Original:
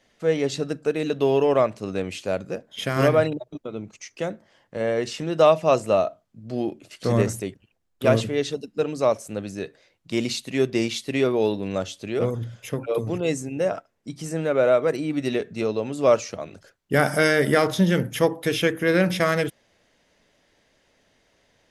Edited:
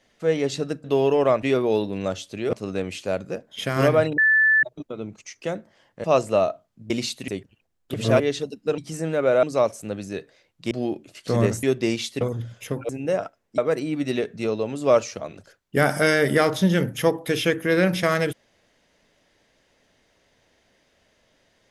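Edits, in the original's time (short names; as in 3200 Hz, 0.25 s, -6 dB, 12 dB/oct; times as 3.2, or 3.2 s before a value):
0.84–1.14 cut
3.38 add tone 1750 Hz -14 dBFS 0.45 s
4.79–5.61 cut
6.47–7.39 swap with 10.17–10.55
8.05–8.31 reverse
11.13–12.23 move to 1.73
12.91–13.41 cut
14.1–14.75 move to 8.89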